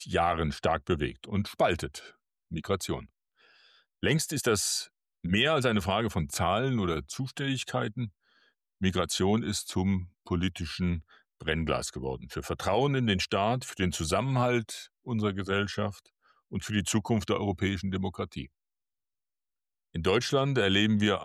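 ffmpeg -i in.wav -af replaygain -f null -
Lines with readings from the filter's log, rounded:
track_gain = +9.5 dB
track_peak = 0.145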